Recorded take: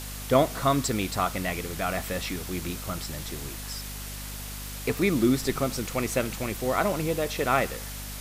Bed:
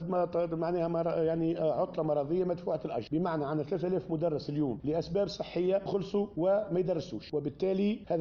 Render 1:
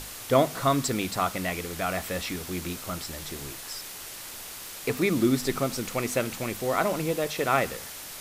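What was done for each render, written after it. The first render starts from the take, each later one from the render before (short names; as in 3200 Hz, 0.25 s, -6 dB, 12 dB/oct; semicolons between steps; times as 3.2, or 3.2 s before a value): notches 50/100/150/200/250 Hz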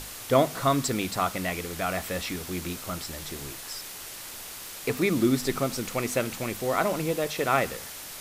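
nothing audible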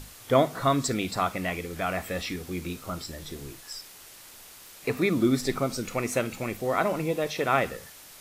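noise print and reduce 8 dB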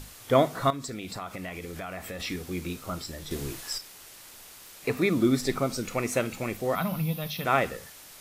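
0.7–2.2 compressor 4:1, threshold -34 dBFS; 3.31–3.78 gain +6 dB; 6.75–7.45 EQ curve 110 Hz 0 dB, 180 Hz +8 dB, 350 Hz -17 dB, 750 Hz -7 dB, 1300 Hz -4 dB, 1900 Hz -9 dB, 3300 Hz +2 dB, 5300 Hz -2 dB, 7800 Hz -12 dB, 12000 Hz +10 dB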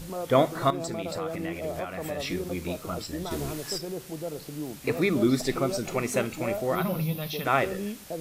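add bed -4.5 dB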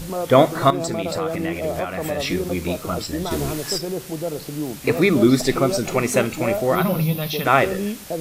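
gain +8 dB; limiter -1 dBFS, peak gain reduction 1 dB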